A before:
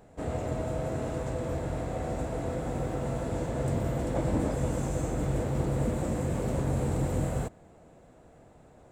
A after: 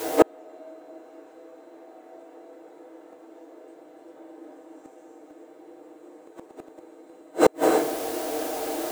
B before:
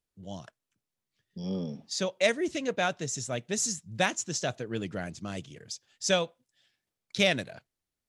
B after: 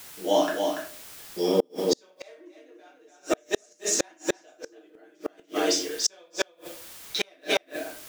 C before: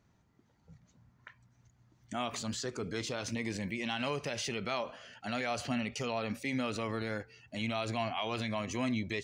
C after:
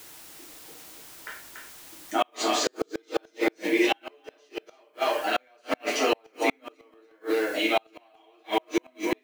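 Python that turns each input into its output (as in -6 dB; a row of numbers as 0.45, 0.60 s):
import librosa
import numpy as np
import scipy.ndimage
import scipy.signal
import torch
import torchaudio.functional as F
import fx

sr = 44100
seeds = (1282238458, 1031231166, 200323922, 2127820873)

p1 = 10.0 ** (-22.5 / 20.0) * np.tanh(x / 10.0 ** (-22.5 / 20.0))
p2 = fx.rider(p1, sr, range_db=5, speed_s=2.0)
p3 = scipy.signal.sosfilt(scipy.signal.ellip(4, 1.0, 80, 300.0, 'highpass', fs=sr, output='sos'), p2)
p4 = fx.high_shelf(p3, sr, hz=8500.0, db=-11.5)
p5 = p4 + 0.6 * np.pad(p4, (int(6.5 * sr / 1000.0), 0))[:len(p4)]
p6 = fx.room_shoebox(p5, sr, seeds[0], volume_m3=44.0, walls='mixed', distance_m=1.0)
p7 = np.clip(p6, -10.0 ** (-12.5 / 20.0), 10.0 ** (-12.5 / 20.0))
p8 = p7 + fx.echo_single(p7, sr, ms=287, db=-5.5, dry=0)
p9 = fx.dmg_noise_colour(p8, sr, seeds[1], colour='white', level_db=-56.0)
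p10 = fx.gate_flip(p9, sr, shuts_db=-20.0, range_db=-39)
y = p10 * 10.0 ** (-30 / 20.0) / np.sqrt(np.mean(np.square(p10)))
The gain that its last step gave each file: +18.0, +11.0, +9.0 dB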